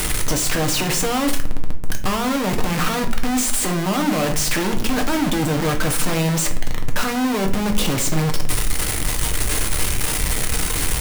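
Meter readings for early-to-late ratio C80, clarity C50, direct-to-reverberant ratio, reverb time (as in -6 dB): 15.0 dB, 11.0 dB, 3.0 dB, 0.55 s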